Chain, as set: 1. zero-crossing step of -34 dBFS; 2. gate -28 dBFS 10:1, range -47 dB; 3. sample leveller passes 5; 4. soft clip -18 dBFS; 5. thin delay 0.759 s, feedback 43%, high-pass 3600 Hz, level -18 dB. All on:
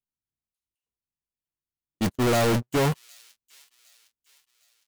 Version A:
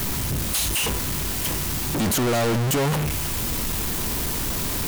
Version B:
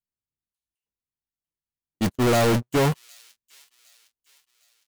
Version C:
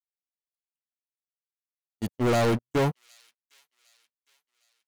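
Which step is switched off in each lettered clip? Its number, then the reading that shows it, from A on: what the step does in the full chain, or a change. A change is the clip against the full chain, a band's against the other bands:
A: 2, momentary loudness spread change -5 LU; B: 4, distortion -25 dB; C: 1, distortion -7 dB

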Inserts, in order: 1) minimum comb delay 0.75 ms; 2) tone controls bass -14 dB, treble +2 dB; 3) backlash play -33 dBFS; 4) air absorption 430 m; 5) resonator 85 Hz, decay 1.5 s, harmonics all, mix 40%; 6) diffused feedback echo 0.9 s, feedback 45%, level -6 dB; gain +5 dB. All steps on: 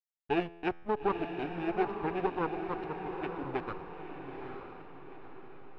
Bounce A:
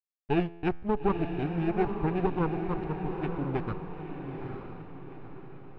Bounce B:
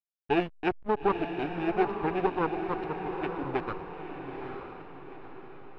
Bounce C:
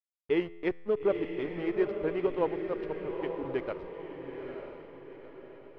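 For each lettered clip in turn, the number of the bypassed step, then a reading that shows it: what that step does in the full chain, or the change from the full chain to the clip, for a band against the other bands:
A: 2, 125 Hz band +12.0 dB; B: 5, loudness change +4.0 LU; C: 1, 1 kHz band -7.0 dB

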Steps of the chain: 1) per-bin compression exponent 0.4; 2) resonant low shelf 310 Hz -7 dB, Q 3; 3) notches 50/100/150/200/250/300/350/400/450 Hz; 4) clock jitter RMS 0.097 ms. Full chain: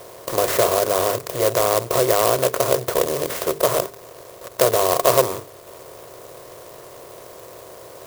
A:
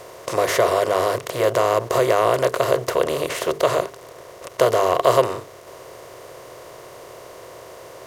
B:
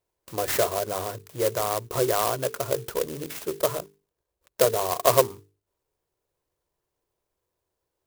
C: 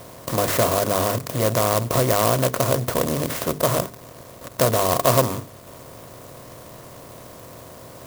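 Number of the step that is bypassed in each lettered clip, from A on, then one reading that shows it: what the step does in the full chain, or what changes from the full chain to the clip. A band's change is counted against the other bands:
4, 8 kHz band -7.5 dB; 1, 125 Hz band +2.0 dB; 2, 125 Hz band +9.5 dB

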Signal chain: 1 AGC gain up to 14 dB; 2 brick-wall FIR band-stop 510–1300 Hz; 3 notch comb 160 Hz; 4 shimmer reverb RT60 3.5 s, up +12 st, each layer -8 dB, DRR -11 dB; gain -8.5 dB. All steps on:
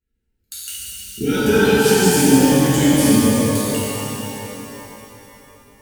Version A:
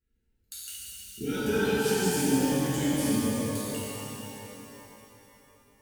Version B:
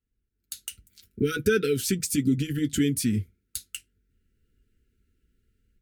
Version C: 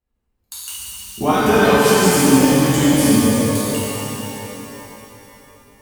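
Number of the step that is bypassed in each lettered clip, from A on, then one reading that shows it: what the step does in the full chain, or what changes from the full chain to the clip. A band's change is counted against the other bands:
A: 1, loudness change -13.0 LU; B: 4, 1 kHz band -9.5 dB; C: 2, 1 kHz band +5.0 dB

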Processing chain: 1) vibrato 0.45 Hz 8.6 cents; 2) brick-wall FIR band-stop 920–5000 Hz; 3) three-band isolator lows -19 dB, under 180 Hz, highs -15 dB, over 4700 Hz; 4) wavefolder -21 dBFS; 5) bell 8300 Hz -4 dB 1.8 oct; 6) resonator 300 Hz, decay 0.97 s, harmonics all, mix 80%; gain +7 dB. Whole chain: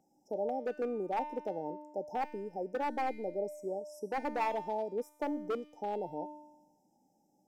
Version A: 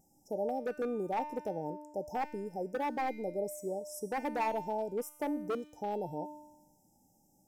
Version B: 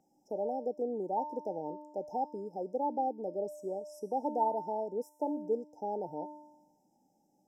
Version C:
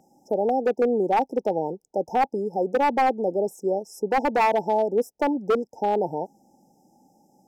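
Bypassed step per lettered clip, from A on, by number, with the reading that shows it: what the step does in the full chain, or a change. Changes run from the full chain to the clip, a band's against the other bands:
3, 8 kHz band +10.0 dB; 4, distortion -10 dB; 6, crest factor change -3.5 dB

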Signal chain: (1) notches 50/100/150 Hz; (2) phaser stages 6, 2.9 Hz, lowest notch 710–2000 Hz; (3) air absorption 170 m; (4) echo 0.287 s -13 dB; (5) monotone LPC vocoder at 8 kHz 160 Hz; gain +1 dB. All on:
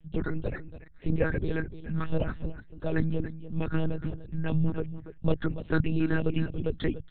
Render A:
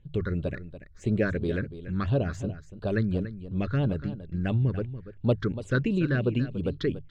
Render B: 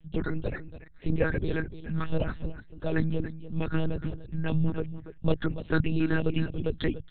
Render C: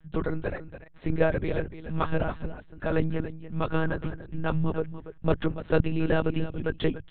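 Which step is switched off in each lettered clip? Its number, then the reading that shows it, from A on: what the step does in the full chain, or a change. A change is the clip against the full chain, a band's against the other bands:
5, 1 kHz band -1.5 dB; 3, 4 kHz band +3.0 dB; 2, crest factor change +2.0 dB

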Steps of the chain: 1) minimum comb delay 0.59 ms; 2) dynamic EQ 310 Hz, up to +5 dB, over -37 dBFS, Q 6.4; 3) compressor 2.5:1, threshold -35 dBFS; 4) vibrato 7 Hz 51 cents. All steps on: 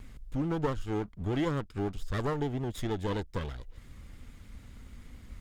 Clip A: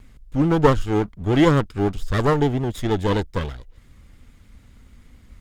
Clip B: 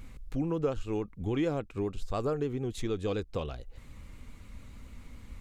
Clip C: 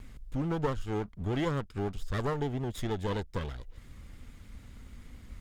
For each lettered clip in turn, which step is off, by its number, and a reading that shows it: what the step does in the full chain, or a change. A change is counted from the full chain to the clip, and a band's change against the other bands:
3, mean gain reduction 8.5 dB; 1, 500 Hz band +4.5 dB; 2, 250 Hz band -1.5 dB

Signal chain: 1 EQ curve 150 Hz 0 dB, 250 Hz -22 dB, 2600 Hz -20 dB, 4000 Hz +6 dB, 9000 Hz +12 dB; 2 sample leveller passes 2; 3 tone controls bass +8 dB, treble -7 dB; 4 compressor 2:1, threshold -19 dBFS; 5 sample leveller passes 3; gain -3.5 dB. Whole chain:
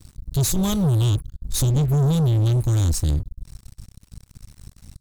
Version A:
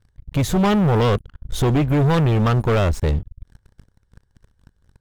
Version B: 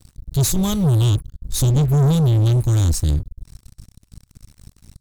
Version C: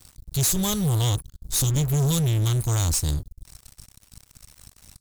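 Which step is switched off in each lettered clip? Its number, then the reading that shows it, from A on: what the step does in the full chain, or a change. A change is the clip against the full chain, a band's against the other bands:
1, 8 kHz band -13.0 dB; 4, loudness change +3.0 LU; 3, momentary loudness spread change -2 LU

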